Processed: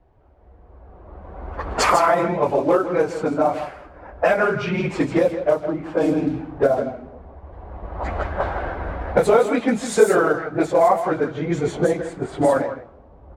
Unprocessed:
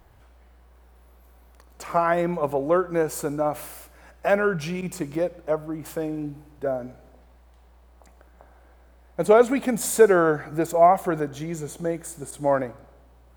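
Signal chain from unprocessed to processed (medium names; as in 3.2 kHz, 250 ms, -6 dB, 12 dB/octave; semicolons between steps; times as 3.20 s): phase randomisation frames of 50 ms; recorder AGC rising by 17 dB/s; bass shelf 230 Hz -7.5 dB; on a send: delay 161 ms -10.5 dB; on the sum: band noise 1.7–15 kHz -56 dBFS; in parallel at -11.5 dB: short-mantissa float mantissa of 2-bit; on the sum: level-controlled noise filter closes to 680 Hz, open at -11.5 dBFS; treble shelf 10 kHz -9.5 dB; trim -1 dB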